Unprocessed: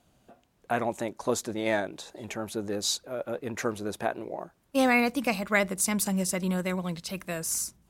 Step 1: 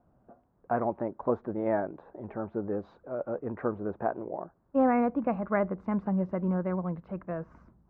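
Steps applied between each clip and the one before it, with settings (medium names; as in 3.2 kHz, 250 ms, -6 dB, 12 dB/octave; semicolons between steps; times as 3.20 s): low-pass 1.3 kHz 24 dB/octave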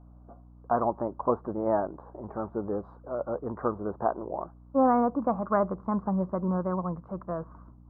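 resonant high shelf 1.7 kHz -13.5 dB, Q 3; hum 60 Hz, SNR 22 dB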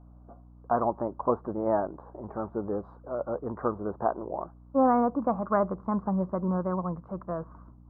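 no audible change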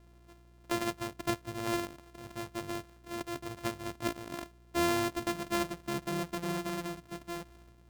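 sorted samples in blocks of 128 samples; trim -7 dB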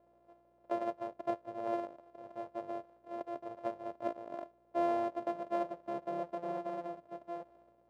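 band-pass filter 600 Hz, Q 3.5; trim +6.5 dB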